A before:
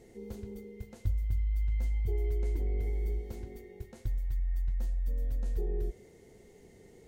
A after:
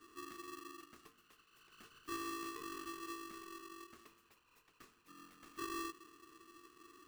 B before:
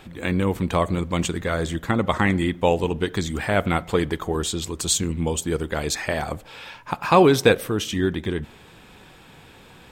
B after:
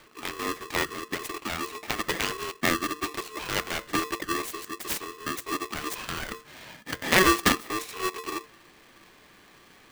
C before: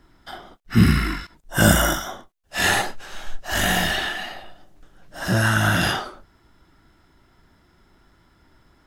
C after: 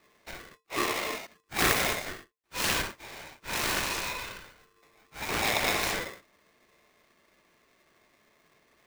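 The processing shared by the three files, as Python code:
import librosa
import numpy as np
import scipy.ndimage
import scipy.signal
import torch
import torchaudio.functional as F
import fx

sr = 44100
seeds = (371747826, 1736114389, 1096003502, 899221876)

y = fx.self_delay(x, sr, depth_ms=0.71)
y = scipy.signal.sosfilt(scipy.signal.cheby1(6, 9, 290.0, 'highpass', fs=sr, output='sos'), y)
y = y * np.sign(np.sin(2.0 * np.pi * 750.0 * np.arange(len(y)) / sr))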